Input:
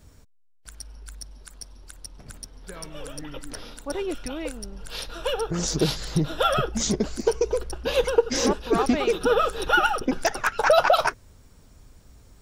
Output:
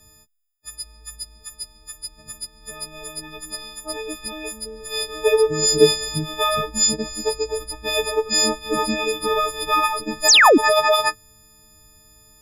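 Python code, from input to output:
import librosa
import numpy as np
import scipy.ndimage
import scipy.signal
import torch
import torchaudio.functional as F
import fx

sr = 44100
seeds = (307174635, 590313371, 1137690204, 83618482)

y = fx.freq_snap(x, sr, grid_st=6)
y = fx.small_body(y, sr, hz=(420.0, 1500.0), ring_ms=40, db=17, at=(4.65, 6.07), fade=0.02)
y = fx.spec_paint(y, sr, seeds[0], shape='fall', start_s=10.28, length_s=0.3, low_hz=240.0, high_hz=8300.0, level_db=-8.0)
y = y * librosa.db_to_amplitude(-3.0)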